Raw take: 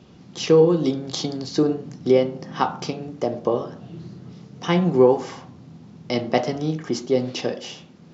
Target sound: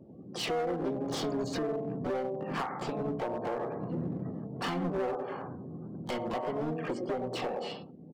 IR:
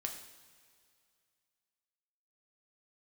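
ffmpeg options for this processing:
-filter_complex "[0:a]bass=frequency=250:gain=-5,treble=frequency=4000:gain=-15,dynaudnorm=framelen=120:gausssize=11:maxgain=6dB,asplit=2[link_01][link_02];[link_02]adelay=98,lowpass=frequency=860:poles=1,volume=-10.5dB,asplit=2[link_03][link_04];[link_04]adelay=98,lowpass=frequency=860:poles=1,volume=0.33,asplit=2[link_05][link_06];[link_06]adelay=98,lowpass=frequency=860:poles=1,volume=0.33,asplit=2[link_07][link_08];[link_08]adelay=98,lowpass=frequency=860:poles=1,volume=0.33[link_09];[link_03][link_05][link_07][link_09]amix=inputs=4:normalize=0[link_10];[link_01][link_10]amix=inputs=2:normalize=0,acompressor=threshold=-27dB:ratio=16,afftdn=noise_reduction=32:noise_floor=-47,asoftclip=type=hard:threshold=-30dB,asplit=2[link_11][link_12];[link_12]asetrate=66075,aresample=44100,atempo=0.66742,volume=-4dB[link_13];[link_11][link_13]amix=inputs=2:normalize=0,adynamicequalizer=threshold=0.00398:dfrequency=2000:dqfactor=0.7:tfrequency=2000:tqfactor=0.7:attack=5:release=100:ratio=0.375:range=2:mode=cutabove:tftype=highshelf"

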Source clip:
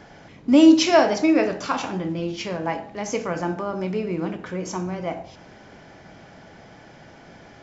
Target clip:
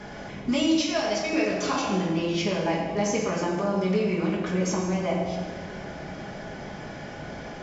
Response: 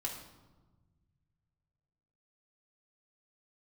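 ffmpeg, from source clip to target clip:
-filter_complex "[0:a]asettb=1/sr,asplit=3[link_01][link_02][link_03];[link_01]atrim=end=0.754[link_04];[link_02]atrim=start=0.75:end=1.33,asetpts=PTS-STARTPTS,afade=type=in:duration=0.004:curve=qsin,afade=type=out:start_time=0.576:duration=0.004:curve=qsin,equalizer=frequency=310:width=0.38:gain=-14[link_05];[link_03]atrim=start=1.326[link_06];[link_04][link_05]acrossfade=duration=0.004:curve1=hsin:curve2=qsin[link_07];[link_07][link_06]acrossfade=duration=0.004:curve1=qsin:curve2=hsin,acrossover=split=880|2600[link_08][link_09][link_10];[link_08]acompressor=threshold=-33dB:ratio=4[link_11];[link_09]acompressor=threshold=-46dB:ratio=4[link_12];[link_10]acompressor=threshold=-39dB:ratio=4[link_13];[link_11][link_12][link_13]amix=inputs=3:normalize=0[link_14];[1:a]atrim=start_sample=2205,asetrate=24696,aresample=44100[link_15];[link_14][link_15]afir=irnorm=-1:irlink=0,volume=3dB"

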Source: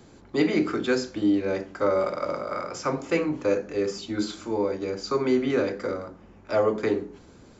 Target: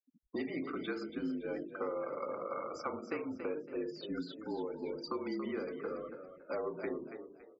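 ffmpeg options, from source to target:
ffmpeg -i in.wav -filter_complex "[0:a]bandreject=frequency=128.9:width_type=h:width=4,bandreject=frequency=257.8:width_type=h:width=4,bandreject=frequency=386.7:width_type=h:width=4,bandreject=frequency=515.6:width_type=h:width=4,bandreject=frequency=644.5:width_type=h:width=4,bandreject=frequency=773.4:width_type=h:width=4,bandreject=frequency=902.3:width_type=h:width=4,bandreject=frequency=1031.2:width_type=h:width=4,bandreject=frequency=1160.1:width_type=h:width=4,bandreject=frequency=1289:width_type=h:width=4,bandreject=frequency=1417.9:width_type=h:width=4,bandreject=frequency=1546.8:width_type=h:width=4,bandreject=frequency=1675.7:width_type=h:width=4,bandreject=frequency=1804.6:width_type=h:width=4,bandreject=frequency=1933.5:width_type=h:width=4,bandreject=frequency=2062.4:width_type=h:width=4,bandreject=frequency=2191.3:width_type=h:width=4,bandreject=frequency=2320.2:width_type=h:width=4,bandreject=frequency=2449.1:width_type=h:width=4,bandreject=frequency=2578:width_type=h:width=4,bandreject=frequency=2706.9:width_type=h:width=4,bandreject=frequency=2835.8:width_type=h:width=4,bandreject=frequency=2964.7:width_type=h:width=4,bandreject=frequency=3093.6:width_type=h:width=4,bandreject=frequency=3222.5:width_type=h:width=4,bandreject=frequency=3351.4:width_type=h:width=4,bandreject=frequency=3480.3:width_type=h:width=4,bandreject=frequency=3609.2:width_type=h:width=4,bandreject=frequency=3738.1:width_type=h:width=4,bandreject=frequency=3867:width_type=h:width=4,bandreject=frequency=3995.9:width_type=h:width=4,bandreject=frequency=4124.8:width_type=h:width=4,afftfilt=real='re*gte(hypot(re,im),0.0251)':imag='im*gte(hypot(re,im),0.0251)':win_size=1024:overlap=0.75,acrossover=split=240 4700:gain=0.158 1 0.1[link_01][link_02][link_03];[link_01][link_02][link_03]amix=inputs=3:normalize=0,acompressor=threshold=-34dB:ratio=4,afreqshift=-43,asplit=4[link_04][link_05][link_06][link_07];[link_05]adelay=281,afreqshift=39,volume=-9.5dB[link_08];[link_06]adelay=562,afreqshift=78,volume=-19.7dB[link_09];[link_07]adelay=843,afreqshift=117,volume=-29.8dB[link_10];[link_04][link_08][link_09][link_10]amix=inputs=4:normalize=0,volume=-3dB" out.wav

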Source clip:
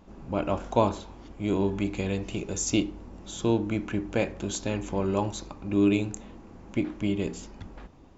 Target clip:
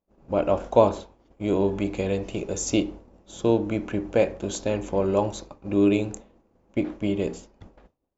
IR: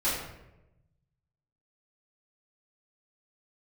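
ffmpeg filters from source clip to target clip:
-af "agate=range=-33dB:threshold=-34dB:ratio=3:detection=peak,equalizer=frequency=540:width_type=o:width=0.93:gain=8.5"

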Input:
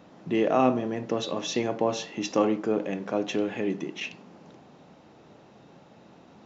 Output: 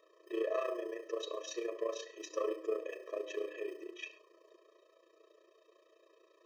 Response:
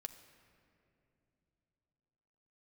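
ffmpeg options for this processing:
-filter_complex "[0:a]acrossover=split=170|1400[link_01][link_02][link_03];[link_01]acrusher=samples=27:mix=1:aa=0.000001[link_04];[link_04][link_02][link_03]amix=inputs=3:normalize=0,asoftclip=type=tanh:threshold=-17dB,tremolo=f=29:d=0.824,bandreject=frequency=78.73:width_type=h:width=4,bandreject=frequency=157.46:width_type=h:width=4,bandreject=frequency=236.19:width_type=h:width=4,bandreject=frequency=314.92:width_type=h:width=4,bandreject=frequency=393.65:width_type=h:width=4,bandreject=frequency=472.38:width_type=h:width=4,bandreject=frequency=551.11:width_type=h:width=4,bandreject=frequency=629.84:width_type=h:width=4,bandreject=frequency=708.57:width_type=h:width=4,bandreject=frequency=787.3:width_type=h:width=4,bandreject=frequency=866.03:width_type=h:width=4,bandreject=frequency=944.76:width_type=h:width=4,bandreject=frequency=1023.49:width_type=h:width=4,bandreject=frequency=1102.22:width_type=h:width=4[link_05];[1:a]atrim=start_sample=2205,atrim=end_sample=6174[link_06];[link_05][link_06]afir=irnorm=-1:irlink=0,afftfilt=real='re*eq(mod(floor(b*sr/1024/330),2),1)':imag='im*eq(mod(floor(b*sr/1024/330),2),1)':win_size=1024:overlap=0.75"

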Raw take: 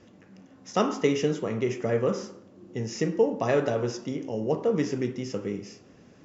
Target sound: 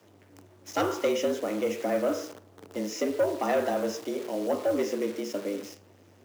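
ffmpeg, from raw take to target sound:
ffmpeg -i in.wav -af "highpass=frequency=79:width=0.5412,highpass=frequency=79:width=1.3066,aeval=exprs='(tanh(7.94*val(0)+0.1)-tanh(0.1))/7.94':channel_layout=same,acrusher=bits=8:dc=4:mix=0:aa=0.000001,afreqshift=96" out.wav

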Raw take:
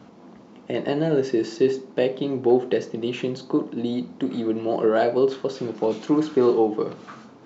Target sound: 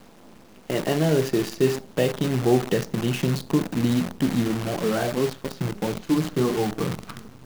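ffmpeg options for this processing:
ffmpeg -i in.wav -filter_complex "[0:a]asubboost=boost=10:cutoff=130,asplit=3[link_01][link_02][link_03];[link_01]afade=type=out:start_time=4.47:duration=0.02[link_04];[link_02]flanger=delay=1:depth=5.8:regen=-35:speed=1.5:shape=triangular,afade=type=in:start_time=4.47:duration=0.02,afade=type=out:start_time=6.8:duration=0.02[link_05];[link_03]afade=type=in:start_time=6.8:duration=0.02[link_06];[link_04][link_05][link_06]amix=inputs=3:normalize=0,acrusher=bits=6:dc=4:mix=0:aa=0.000001,volume=1.5dB" out.wav

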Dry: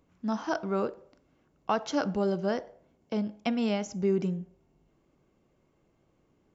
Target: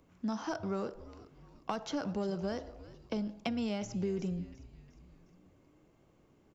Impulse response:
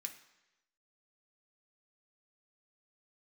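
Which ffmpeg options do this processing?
-filter_complex "[0:a]asplit=2[link_01][link_02];[link_02]asoftclip=type=tanh:threshold=-30dB,volume=-8.5dB[link_03];[link_01][link_03]amix=inputs=2:normalize=0,acrossover=split=160|4500[link_04][link_05][link_06];[link_04]acompressor=threshold=-44dB:ratio=4[link_07];[link_05]acompressor=threshold=-35dB:ratio=4[link_08];[link_06]acompressor=threshold=-51dB:ratio=4[link_09];[link_07][link_08][link_09]amix=inputs=3:normalize=0,asplit=5[link_10][link_11][link_12][link_13][link_14];[link_11]adelay=356,afreqshift=-120,volume=-17dB[link_15];[link_12]adelay=712,afreqshift=-240,volume=-22.8dB[link_16];[link_13]adelay=1068,afreqshift=-360,volume=-28.7dB[link_17];[link_14]adelay=1424,afreqshift=-480,volume=-34.5dB[link_18];[link_10][link_15][link_16][link_17][link_18]amix=inputs=5:normalize=0"

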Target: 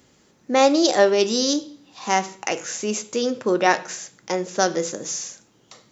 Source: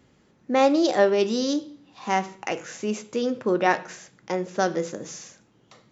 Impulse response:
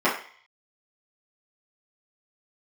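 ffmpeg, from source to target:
-af "bass=frequency=250:gain=-4,treble=frequency=4000:gain=10,volume=3dB"

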